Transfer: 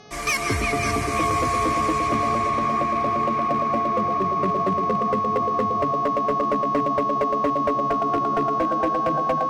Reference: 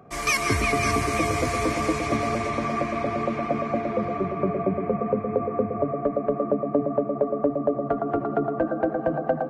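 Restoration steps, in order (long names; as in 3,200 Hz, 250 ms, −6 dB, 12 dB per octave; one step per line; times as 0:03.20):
clipped peaks rebuilt −15.5 dBFS
hum removal 422 Hz, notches 15
notch filter 1,100 Hz, Q 30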